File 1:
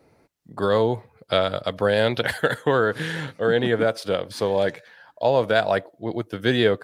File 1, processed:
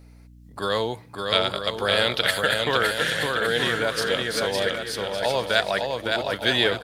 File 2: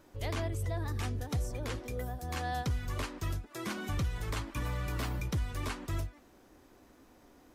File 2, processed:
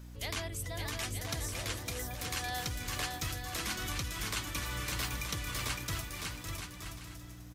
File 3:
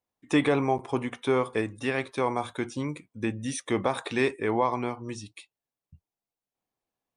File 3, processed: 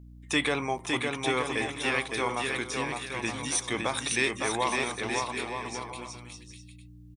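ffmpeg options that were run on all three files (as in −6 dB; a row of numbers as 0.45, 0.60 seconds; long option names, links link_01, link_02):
-af "tiltshelf=frequency=1400:gain=-8,aeval=exprs='val(0)+0.00447*(sin(2*PI*60*n/s)+sin(2*PI*2*60*n/s)/2+sin(2*PI*3*60*n/s)/3+sin(2*PI*4*60*n/s)/4+sin(2*PI*5*60*n/s)/5)':channel_layout=same,aecho=1:1:560|924|1161|1314|1414:0.631|0.398|0.251|0.158|0.1"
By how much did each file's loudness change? −0.5, 0.0, −1.0 LU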